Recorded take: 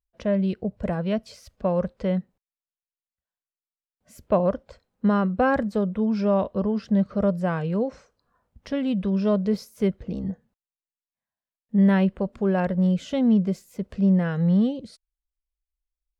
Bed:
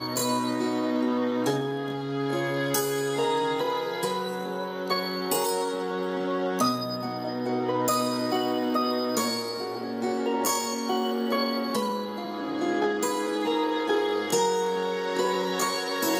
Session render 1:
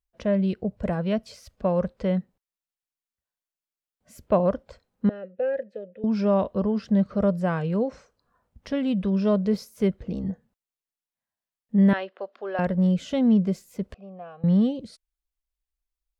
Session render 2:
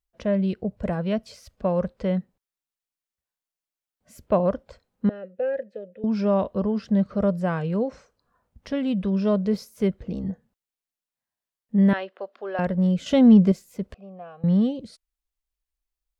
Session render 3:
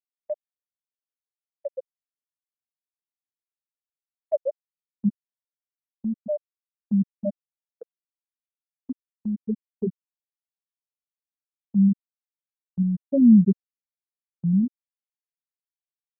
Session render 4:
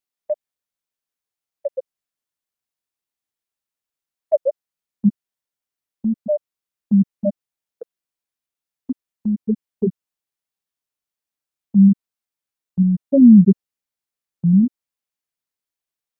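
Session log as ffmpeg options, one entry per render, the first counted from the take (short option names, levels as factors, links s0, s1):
-filter_complex "[0:a]asettb=1/sr,asplit=3[s0][s1][s2];[s0]atrim=end=5.094[s3];[s1]atrim=start=5.09:end=6.04,asetpts=PTS-STARTPTS,afade=t=in:d=0.004:c=qsin,afade=t=out:st=0.946:d=0.004:c=qsin,asplit=3[s4][s5][s6];[s4]bandpass=f=530:t=q:w=8,volume=1[s7];[s5]bandpass=f=1840:t=q:w=8,volume=0.501[s8];[s6]bandpass=f=2480:t=q:w=8,volume=0.355[s9];[s7][s8][s9]amix=inputs=3:normalize=0[s10];[s2]atrim=start=6.036[s11];[s3][s10]acrossfade=d=0.004:c1=hsin:c2=qsin[s12];[s12][s11]acrossfade=d=0.004:c1=qsin:c2=hsin,asettb=1/sr,asplit=3[s13][s14][s15];[s13]atrim=end=11.934[s16];[s14]atrim=start=11.93:end=12.59,asetpts=PTS-STARTPTS,afade=t=in:d=0.004:c=qsin,afade=t=out:st=0.656:d=0.004:c=qsin,highpass=f=450:w=0.5412,highpass=f=450:w=1.3066,equalizer=f=480:t=q:w=4:g=-7,equalizer=f=930:t=q:w=4:g=-5,equalizer=f=2300:t=q:w=4:g=-4,lowpass=f=4800:w=0.5412,lowpass=f=4800:w=1.3066[s17];[s15]atrim=start=12.586[s18];[s16][s17]acrossfade=d=0.004:c1=hsin:c2=qsin[s19];[s19][s18]acrossfade=d=0.004:c1=qsin:c2=hsin,asettb=1/sr,asplit=3[s20][s21][s22];[s20]atrim=end=13.944[s23];[s21]atrim=start=13.94:end=14.44,asetpts=PTS-STARTPTS,afade=t=in:d=0.004:c=qsin,afade=t=out:st=0.496:d=0.004:c=qsin,asplit=3[s24][s25][s26];[s24]bandpass=f=730:t=q:w=8,volume=1[s27];[s25]bandpass=f=1090:t=q:w=8,volume=0.501[s28];[s26]bandpass=f=2440:t=q:w=8,volume=0.355[s29];[s27][s28][s29]amix=inputs=3:normalize=0[s30];[s22]atrim=start=14.436[s31];[s23][s30]acrossfade=d=0.004:c1=hsin:c2=qsin[s32];[s32][s31]acrossfade=d=0.004:c1=qsin:c2=hsin"
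-filter_complex "[0:a]asettb=1/sr,asplit=3[s0][s1][s2];[s0]atrim=end=13.064[s3];[s1]atrim=start=13.06:end=13.52,asetpts=PTS-STARTPTS,afade=t=in:d=0.004:c=qsin,afade=t=out:st=0.456:d=0.004:c=qsin,acontrast=68[s4];[s2]atrim=start=13.516[s5];[s3][s4]acrossfade=d=0.004:c1=hsin:c2=qsin[s6];[s6][s5]acrossfade=d=0.004:c1=qsin:c2=hsin"
-af "afftfilt=real='re*gte(hypot(re,im),1)':imag='im*gte(hypot(re,im),1)':win_size=1024:overlap=0.75,agate=range=0.126:threshold=0.00708:ratio=16:detection=peak"
-af "volume=2.24,alimiter=limit=0.708:level=0:latency=1"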